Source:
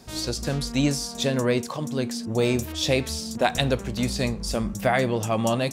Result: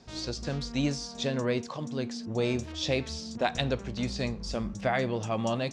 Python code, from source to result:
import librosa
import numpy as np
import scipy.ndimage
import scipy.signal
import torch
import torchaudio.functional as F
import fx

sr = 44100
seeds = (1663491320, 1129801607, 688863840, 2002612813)

y = scipy.signal.sosfilt(scipy.signal.butter(4, 6400.0, 'lowpass', fs=sr, output='sos'), x)
y = F.gain(torch.from_numpy(y), -6.0).numpy()